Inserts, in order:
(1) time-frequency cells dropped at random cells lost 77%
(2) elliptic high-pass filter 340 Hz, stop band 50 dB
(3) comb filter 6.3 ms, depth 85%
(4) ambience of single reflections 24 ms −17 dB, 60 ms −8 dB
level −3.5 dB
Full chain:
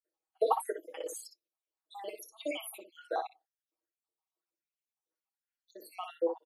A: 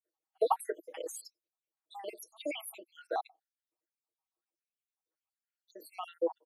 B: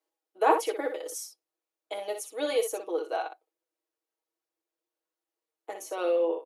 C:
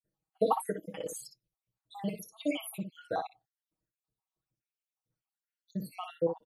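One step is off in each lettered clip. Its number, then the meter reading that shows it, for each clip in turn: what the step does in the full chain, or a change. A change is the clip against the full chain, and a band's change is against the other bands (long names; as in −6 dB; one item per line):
4, change in momentary loudness spread +2 LU
1, 1 kHz band −1.5 dB
2, 250 Hz band +9.0 dB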